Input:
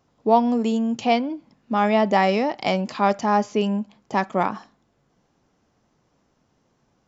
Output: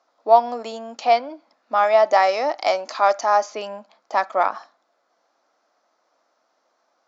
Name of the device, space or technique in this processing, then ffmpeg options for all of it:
phone speaker on a table: -filter_complex "[0:a]asettb=1/sr,asplit=3[link_01][link_02][link_03];[link_01]atrim=end=1.834[link_04];[link_02]atrim=start=1.83:end=3.5,asetpts=PTS-STARTPTS,afade=type=in:duration=0.004:curve=qsin,afade=type=out:start_time=1.666:duration=0.004:curve=qsin,equalizer=frequency=200:width_type=o:width=0.33:gain=-6,equalizer=frequency=315:width_type=o:width=0.33:gain=4,equalizer=frequency=6300:width_type=o:width=0.33:gain=9[link_05];[link_03]atrim=start=3.496[link_06];[link_04][link_05]acrossfade=duration=0.004:curve1=hsin:curve2=qsin[link_07];[link_07][link_06]acrossfade=duration=0.004:curve1=qsin:curve2=hsin,highpass=frequency=390:width=0.5412,highpass=frequency=390:width=1.3066,equalizer=frequency=410:width_type=q:width=4:gain=-10,equalizer=frequency=650:width_type=q:width=4:gain=6,equalizer=frequency=1300:width_type=q:width=4:gain=6,equalizer=frequency=2900:width_type=q:width=4:gain=-6,equalizer=frequency=4400:width_type=q:width=4:gain=4,lowpass=frequency=6600:width=0.5412,lowpass=frequency=6600:width=1.3066,volume=1dB"

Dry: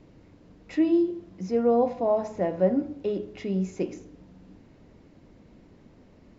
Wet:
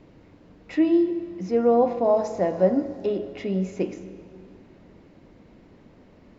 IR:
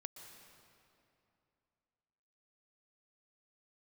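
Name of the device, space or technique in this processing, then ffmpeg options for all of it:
filtered reverb send: -filter_complex "[0:a]asettb=1/sr,asplit=3[link_01][link_02][link_03];[link_01]atrim=end=2.044[link_04];[link_02]atrim=start=2.04:end=3.06,asetpts=PTS-STARTPTS,afade=type=in:duration=0.004:curve=qsin,afade=type=out:start_time=1.016:duration=0.004:curve=qsin,highshelf=frequency=3900:width_type=q:width=1.5:gain=7[link_05];[link_03]atrim=start=3.056[link_06];[link_04][link_05]acrossfade=duration=0.004:curve1=hsin:curve2=qsin[link_07];[link_07][link_06]acrossfade=duration=0.004:curve1=qsin:curve2=hsin,asplit=2[link_08][link_09];[link_09]highpass=frequency=380:poles=1,lowpass=4700[link_10];[1:a]atrim=start_sample=2205[link_11];[link_10][link_11]afir=irnorm=-1:irlink=0,volume=1.5dB[link_12];[link_08][link_12]amix=inputs=2:normalize=0"

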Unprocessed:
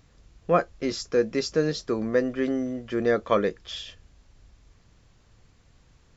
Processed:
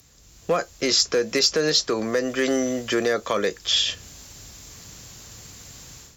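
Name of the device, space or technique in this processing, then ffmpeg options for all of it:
FM broadcast chain: -filter_complex "[0:a]highpass=41,dynaudnorm=framelen=200:gausssize=3:maxgain=13.5dB,acrossover=split=90|400|5000[link_01][link_02][link_03][link_04];[link_01]acompressor=threshold=-53dB:ratio=4[link_05];[link_02]acompressor=threshold=-31dB:ratio=4[link_06];[link_03]acompressor=threshold=-17dB:ratio=4[link_07];[link_04]acompressor=threshold=-49dB:ratio=4[link_08];[link_05][link_06][link_07][link_08]amix=inputs=4:normalize=0,aemphasis=mode=production:type=50fm,alimiter=limit=-13dB:level=0:latency=1:release=68,asoftclip=type=hard:threshold=-14.5dB,lowpass=frequency=15000:width=0.5412,lowpass=frequency=15000:width=1.3066,aemphasis=mode=production:type=50fm,volume=1dB"

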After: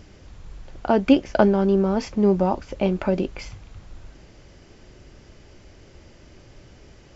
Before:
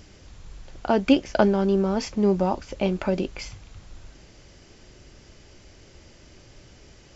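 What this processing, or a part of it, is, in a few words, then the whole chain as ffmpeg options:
behind a face mask: -af "highshelf=frequency=3100:gain=-8,volume=2.5dB"

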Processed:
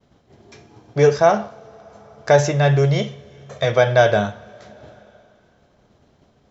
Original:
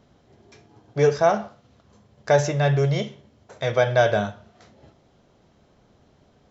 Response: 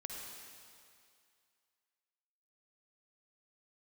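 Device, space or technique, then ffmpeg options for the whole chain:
compressed reverb return: -filter_complex "[0:a]agate=range=-33dB:threshold=-52dB:ratio=3:detection=peak,asettb=1/sr,asplit=3[link_01][link_02][link_03];[link_01]atrim=end=3.074[link_04];[link_02]atrim=start=3.07:end=3.65,asetpts=PTS-STARTPTS,afade=type=in:duration=0.004:curve=qsin,afade=type=out:start_time=0.576:duration=0.004:curve=qsin,aecho=1:1:1.7:0.65,atrim=end_sample=25578[link_05];[link_03]atrim=start=3.646[link_06];[link_04][link_05]acrossfade=duration=0.004:curve1=hsin:curve2=qsin[link_07];[link_07][link_06]acrossfade=duration=0.004:curve1=qsin:curve2=hsin,asplit=2[link_08][link_09];[1:a]atrim=start_sample=2205[link_10];[link_09][link_10]afir=irnorm=-1:irlink=0,acompressor=threshold=-38dB:ratio=5,volume=-6.5dB[link_11];[link_08][link_11]amix=inputs=2:normalize=0,volume=4dB"

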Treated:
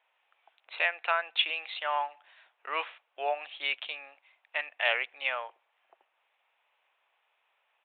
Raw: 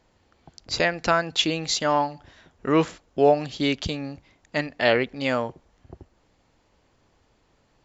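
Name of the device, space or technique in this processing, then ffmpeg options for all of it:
musical greeting card: -af "aresample=8000,aresample=44100,highpass=frequency=710:width=0.5412,highpass=frequency=710:width=1.3066,equalizer=frequency=2500:width_type=o:width=0.44:gain=8,volume=-6dB"

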